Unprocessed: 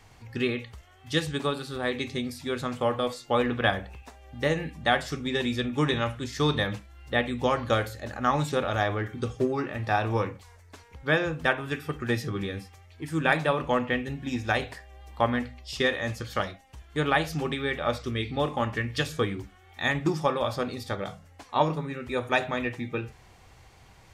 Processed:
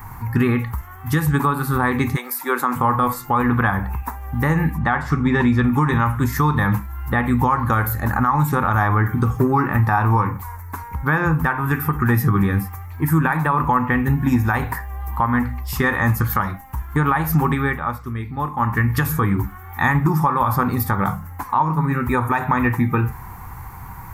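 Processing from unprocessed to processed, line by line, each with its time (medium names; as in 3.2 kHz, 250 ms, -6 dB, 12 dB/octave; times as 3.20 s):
2.15–2.75 s: high-pass 560 Hz -> 240 Hz 24 dB/octave
4.78–5.64 s: low-pass 4.9 kHz
17.43–19.02 s: dip -13.5 dB, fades 0.45 s
whole clip: FFT filter 190 Hz 0 dB, 620 Hz -16 dB, 930 Hz +6 dB, 1.4 kHz -1 dB, 2.1 kHz -8 dB, 3.1 kHz -22 dB, 5 kHz -18 dB, 9.1 kHz -7 dB, 14 kHz +14 dB; compression 5:1, threshold -32 dBFS; loudness maximiser +26 dB; trim -6.5 dB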